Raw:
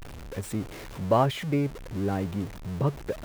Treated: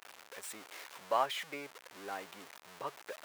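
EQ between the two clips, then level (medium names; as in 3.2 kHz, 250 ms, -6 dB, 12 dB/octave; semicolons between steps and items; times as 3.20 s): high-pass 900 Hz 12 dB/octave; -3.0 dB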